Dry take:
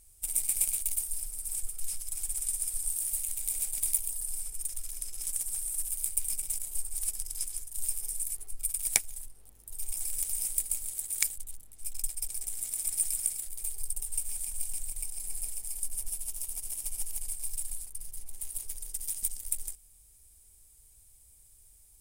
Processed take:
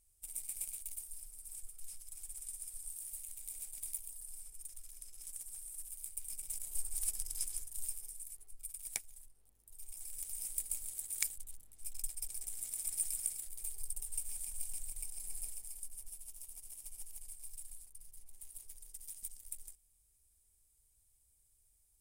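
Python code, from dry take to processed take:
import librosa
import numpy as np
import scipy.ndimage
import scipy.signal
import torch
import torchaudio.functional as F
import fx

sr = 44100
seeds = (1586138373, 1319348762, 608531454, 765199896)

y = fx.gain(x, sr, db=fx.line((6.19, -13.5), (6.83, -4.0), (7.64, -4.0), (8.17, -14.0), (9.91, -14.0), (10.74, -7.0), (15.45, -7.0), (15.95, -13.5)))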